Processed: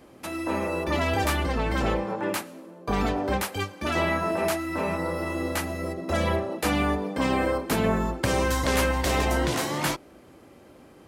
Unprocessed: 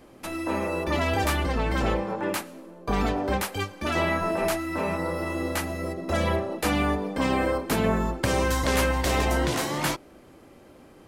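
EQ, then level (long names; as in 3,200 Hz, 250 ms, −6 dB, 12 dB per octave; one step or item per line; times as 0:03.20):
high-pass filter 43 Hz
0.0 dB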